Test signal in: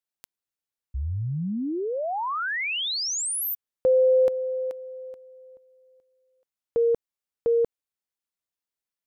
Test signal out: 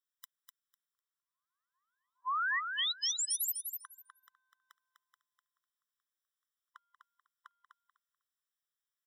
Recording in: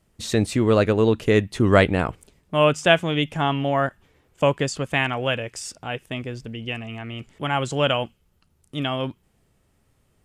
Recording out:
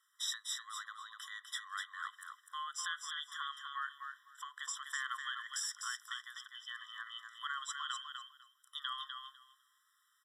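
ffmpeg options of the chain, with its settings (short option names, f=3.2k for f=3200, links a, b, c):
-af "acompressor=threshold=-30dB:ratio=12:attack=8.8:release=163:knee=6:detection=peak,aecho=1:1:250|500|750:0.501|0.0852|0.0145,afftfilt=real='re*eq(mod(floor(b*sr/1024/1000),2),1)':imag='im*eq(mod(floor(b*sr/1024/1000),2),1)':win_size=1024:overlap=0.75"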